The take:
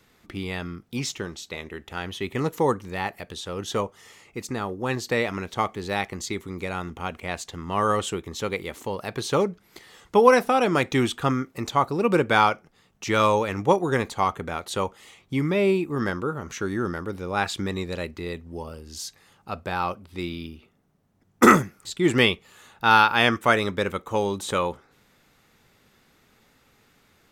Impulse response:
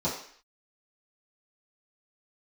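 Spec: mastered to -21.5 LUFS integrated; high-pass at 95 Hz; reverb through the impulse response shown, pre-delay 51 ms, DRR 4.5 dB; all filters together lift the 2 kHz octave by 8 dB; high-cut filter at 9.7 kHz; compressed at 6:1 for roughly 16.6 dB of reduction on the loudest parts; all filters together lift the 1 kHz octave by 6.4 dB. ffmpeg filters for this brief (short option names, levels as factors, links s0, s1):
-filter_complex "[0:a]highpass=95,lowpass=9700,equalizer=f=1000:t=o:g=5.5,equalizer=f=2000:t=o:g=8.5,acompressor=threshold=0.0794:ratio=6,asplit=2[s0][s1];[1:a]atrim=start_sample=2205,adelay=51[s2];[s1][s2]afir=irnorm=-1:irlink=0,volume=0.211[s3];[s0][s3]amix=inputs=2:normalize=0,volume=1.78"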